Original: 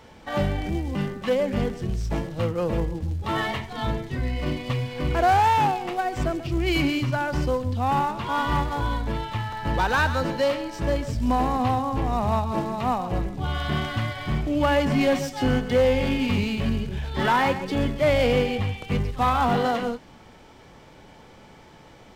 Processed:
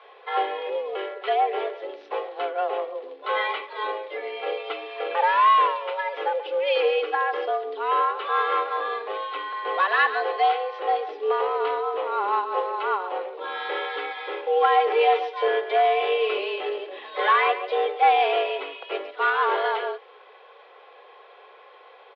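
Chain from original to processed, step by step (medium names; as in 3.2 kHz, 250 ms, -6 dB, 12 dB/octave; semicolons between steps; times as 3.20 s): comb 3.3 ms, depth 49%; mistuned SSB +190 Hz 220–3500 Hz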